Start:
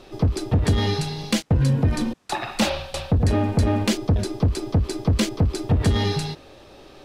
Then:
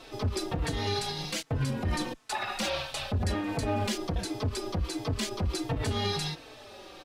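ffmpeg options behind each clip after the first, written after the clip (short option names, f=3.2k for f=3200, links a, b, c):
-filter_complex "[0:a]lowshelf=f=440:g=-9.5,alimiter=limit=-23.5dB:level=0:latency=1:release=86,asplit=2[a][b];[b]adelay=4,afreqshift=-1.4[c];[a][c]amix=inputs=2:normalize=1,volume=5dB"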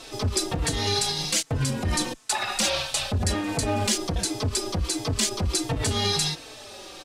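-af "equalizer=f=8k:t=o:w=1.6:g=11.5,volume=3.5dB"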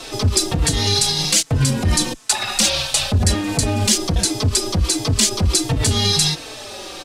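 -filter_complex "[0:a]acrossover=split=270|3000[a][b][c];[b]acompressor=threshold=-36dB:ratio=3[d];[a][d][c]amix=inputs=3:normalize=0,volume=9dB"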